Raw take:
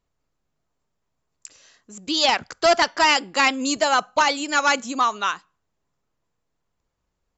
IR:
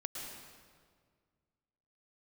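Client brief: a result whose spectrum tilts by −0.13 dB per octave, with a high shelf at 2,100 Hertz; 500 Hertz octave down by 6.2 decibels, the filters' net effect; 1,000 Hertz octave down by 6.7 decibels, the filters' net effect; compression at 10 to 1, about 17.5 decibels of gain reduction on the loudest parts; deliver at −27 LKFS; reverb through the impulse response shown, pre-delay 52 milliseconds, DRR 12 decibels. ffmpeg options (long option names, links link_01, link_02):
-filter_complex "[0:a]equalizer=frequency=500:width_type=o:gain=-5,equalizer=frequency=1000:width_type=o:gain=-9,highshelf=frequency=2100:gain=6.5,acompressor=threshold=-31dB:ratio=10,asplit=2[link_01][link_02];[1:a]atrim=start_sample=2205,adelay=52[link_03];[link_02][link_03]afir=irnorm=-1:irlink=0,volume=-12dB[link_04];[link_01][link_04]amix=inputs=2:normalize=0,volume=7dB"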